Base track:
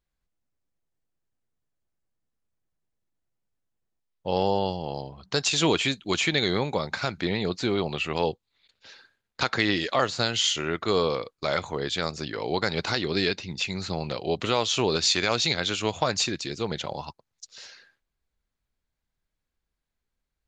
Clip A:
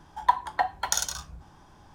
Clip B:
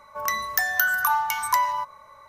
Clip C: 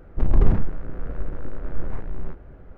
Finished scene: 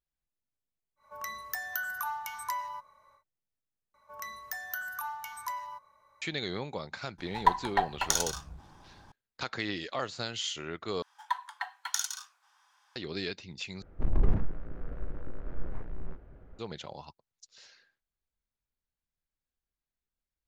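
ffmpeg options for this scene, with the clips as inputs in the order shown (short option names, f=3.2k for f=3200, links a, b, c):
-filter_complex "[2:a]asplit=2[a][b];[1:a]asplit=2[c][d];[0:a]volume=-10.5dB[e];[c]aeval=exprs='if(lt(val(0),0),0.708*val(0),val(0))':c=same[f];[d]highpass=f=1.1k:w=0.5412,highpass=f=1.1k:w=1.3066[g];[e]asplit=4[h][i][j][k];[h]atrim=end=3.944[l];[b]atrim=end=2.28,asetpts=PTS-STARTPTS,volume=-15.5dB[m];[i]atrim=start=6.216:end=11.024[n];[g]atrim=end=1.94,asetpts=PTS-STARTPTS,volume=-5dB[o];[j]atrim=start=12.956:end=13.824[p];[3:a]atrim=end=2.77,asetpts=PTS-STARTPTS,volume=-8.5dB[q];[k]atrim=start=16.586[r];[a]atrim=end=2.28,asetpts=PTS-STARTPTS,volume=-13dB,afade=t=in:d=0.1,afade=t=out:st=2.18:d=0.1,adelay=960[s];[f]atrim=end=1.94,asetpts=PTS-STARTPTS,volume=-0.5dB,afade=t=in:d=0.004:c=hsin,afade=t=out:st=1.936:d=0.004:c=hsin,adelay=7180[t];[l][m]acrossfade=d=0.004:c1=hsin:c2=hsin[u];[u][n]acrossfade=d=0.004:c1=hsin:c2=hsin[v];[v][o]acrossfade=d=0.004:c1=hsin:c2=hsin[w];[w][p]acrossfade=d=0.004:c1=hsin:c2=hsin[x];[x][q]acrossfade=d=0.004:c1=hsin:c2=hsin[y];[y][r]acrossfade=d=0.004:c1=hsin:c2=hsin[z];[z][s][t]amix=inputs=3:normalize=0"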